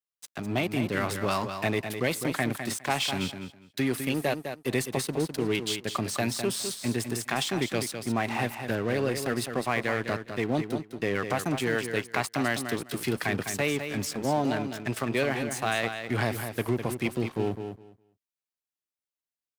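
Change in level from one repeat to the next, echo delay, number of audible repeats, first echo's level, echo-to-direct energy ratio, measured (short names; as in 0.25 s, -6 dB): -15.5 dB, 0.205 s, 2, -8.0 dB, -8.0 dB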